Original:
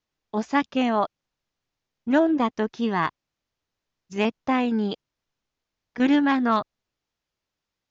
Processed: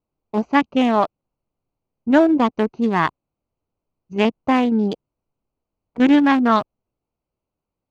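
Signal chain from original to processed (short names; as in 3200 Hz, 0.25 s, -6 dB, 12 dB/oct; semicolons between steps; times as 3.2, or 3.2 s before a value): Wiener smoothing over 25 samples; gain +6 dB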